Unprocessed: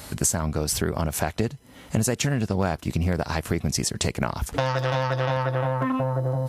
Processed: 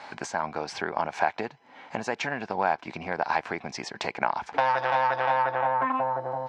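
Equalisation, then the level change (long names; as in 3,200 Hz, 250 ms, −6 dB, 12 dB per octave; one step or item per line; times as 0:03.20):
loudspeaker in its box 270–5,200 Hz, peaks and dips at 1,000 Hz +5 dB, 1,600 Hz +9 dB, 2,300 Hz +9 dB
parametric band 810 Hz +13.5 dB 0.63 octaves
−7.0 dB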